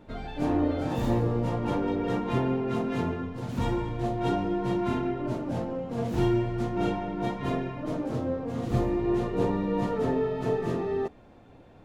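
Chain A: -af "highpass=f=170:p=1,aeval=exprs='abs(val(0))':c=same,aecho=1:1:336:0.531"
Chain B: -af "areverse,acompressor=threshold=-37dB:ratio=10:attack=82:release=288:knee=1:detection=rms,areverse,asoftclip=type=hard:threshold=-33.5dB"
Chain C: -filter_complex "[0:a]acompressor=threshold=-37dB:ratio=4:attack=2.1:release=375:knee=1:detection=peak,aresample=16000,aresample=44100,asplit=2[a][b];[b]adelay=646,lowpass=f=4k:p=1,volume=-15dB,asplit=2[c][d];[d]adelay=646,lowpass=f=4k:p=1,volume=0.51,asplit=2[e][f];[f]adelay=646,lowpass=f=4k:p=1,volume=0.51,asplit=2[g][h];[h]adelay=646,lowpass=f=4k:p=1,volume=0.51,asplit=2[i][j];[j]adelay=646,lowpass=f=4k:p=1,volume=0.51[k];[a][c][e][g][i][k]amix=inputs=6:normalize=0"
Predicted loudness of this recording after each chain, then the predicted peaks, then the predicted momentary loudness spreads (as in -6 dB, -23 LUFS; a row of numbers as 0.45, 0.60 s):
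-34.0, -40.0, -40.5 LUFS; -13.0, -33.5, -28.0 dBFS; 5, 2, 2 LU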